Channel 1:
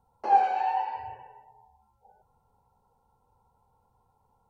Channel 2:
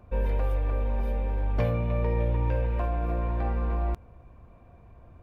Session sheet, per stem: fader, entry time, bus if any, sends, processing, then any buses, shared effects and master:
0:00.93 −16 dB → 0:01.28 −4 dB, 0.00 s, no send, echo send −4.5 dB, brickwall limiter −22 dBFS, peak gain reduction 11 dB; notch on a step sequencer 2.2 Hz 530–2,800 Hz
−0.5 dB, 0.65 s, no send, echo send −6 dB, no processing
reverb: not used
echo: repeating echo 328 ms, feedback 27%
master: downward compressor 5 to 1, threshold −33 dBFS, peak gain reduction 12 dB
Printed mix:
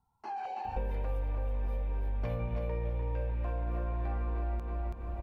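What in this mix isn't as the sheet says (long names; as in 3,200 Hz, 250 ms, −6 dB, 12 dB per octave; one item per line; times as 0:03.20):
stem 1 −16.0 dB → −6.0 dB
stem 2 −0.5 dB → +8.0 dB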